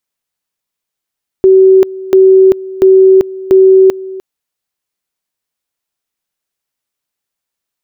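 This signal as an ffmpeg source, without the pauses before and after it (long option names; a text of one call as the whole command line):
ffmpeg -f lavfi -i "aevalsrc='pow(10,(-1.5-19*gte(mod(t,0.69),0.39))/20)*sin(2*PI*380*t)':duration=2.76:sample_rate=44100" out.wav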